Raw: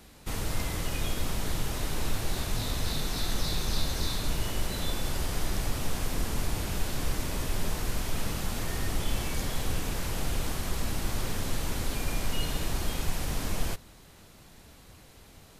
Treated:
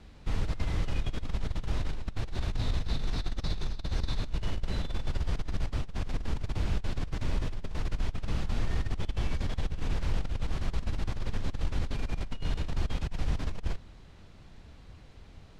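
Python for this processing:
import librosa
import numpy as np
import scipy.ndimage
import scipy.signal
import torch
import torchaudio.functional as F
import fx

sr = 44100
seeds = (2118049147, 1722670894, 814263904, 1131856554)

y = scipy.signal.sosfilt(scipy.signal.butter(2, 4400.0, 'lowpass', fs=sr, output='sos'), x)
y = fx.low_shelf(y, sr, hz=140.0, db=10.0)
y = fx.over_compress(y, sr, threshold_db=-21.0, ratio=-0.5)
y = F.gain(torch.from_numpy(y), -6.5).numpy()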